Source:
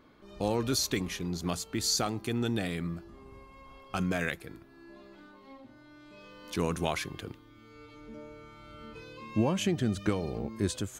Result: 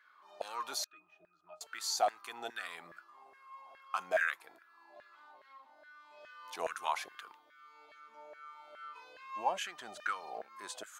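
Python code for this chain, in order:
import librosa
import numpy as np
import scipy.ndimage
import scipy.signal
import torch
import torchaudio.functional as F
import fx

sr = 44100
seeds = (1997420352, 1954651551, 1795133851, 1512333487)

y = fx.octave_resonator(x, sr, note='D#', decay_s=0.15, at=(0.84, 1.61))
y = fx.filter_lfo_highpass(y, sr, shape='saw_down', hz=2.4, low_hz=630.0, high_hz=1700.0, q=6.6)
y = y * librosa.db_to_amplitude(-7.5)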